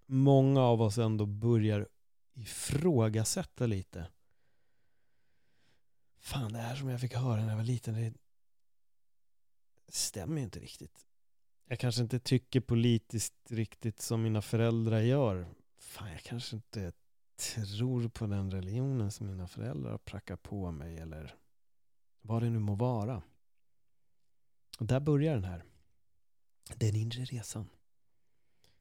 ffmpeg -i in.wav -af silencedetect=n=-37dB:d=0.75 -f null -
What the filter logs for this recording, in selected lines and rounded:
silence_start: 4.06
silence_end: 6.26 | silence_duration: 2.21
silence_start: 8.09
silence_end: 9.94 | silence_duration: 1.85
silence_start: 10.83
silence_end: 11.71 | silence_duration: 0.88
silence_start: 21.22
silence_end: 22.30 | silence_duration: 1.08
silence_start: 23.20
silence_end: 24.73 | silence_duration: 1.54
silence_start: 25.57
silence_end: 26.67 | silence_duration: 1.09
silence_start: 27.63
silence_end: 28.80 | silence_duration: 1.17